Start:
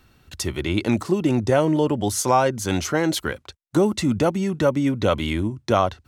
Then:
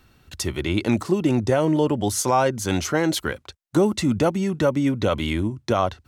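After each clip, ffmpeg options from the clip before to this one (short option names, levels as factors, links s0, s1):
-af "alimiter=level_in=2.37:limit=0.891:release=50:level=0:latency=1,volume=0.422"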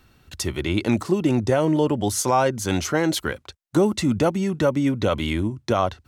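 -af anull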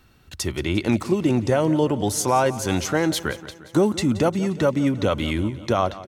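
-af "aecho=1:1:176|352|528|704|880|1056:0.141|0.0848|0.0509|0.0305|0.0183|0.011"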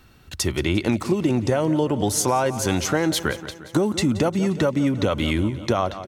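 -af "acompressor=threshold=0.1:ratio=6,volume=1.5"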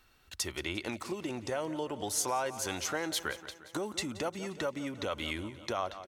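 -af "equalizer=f=140:t=o:w=2.8:g=-13.5,volume=0.376"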